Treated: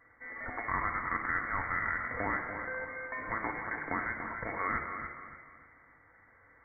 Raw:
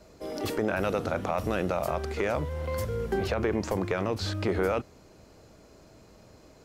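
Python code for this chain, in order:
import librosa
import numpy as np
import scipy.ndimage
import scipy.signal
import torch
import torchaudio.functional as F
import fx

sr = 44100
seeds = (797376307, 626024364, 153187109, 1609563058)

y = scipy.signal.sosfilt(scipy.signal.bessel(4, 1100.0, 'highpass', norm='mag', fs=sr, output='sos'), x)
y = fx.room_shoebox(y, sr, seeds[0], volume_m3=2400.0, walls='mixed', distance_m=1.4)
y = fx.freq_invert(y, sr, carrier_hz=2600)
y = fx.echo_feedback(y, sr, ms=288, feedback_pct=32, wet_db=-9)
y = F.gain(torch.from_numpy(y), 2.0).numpy()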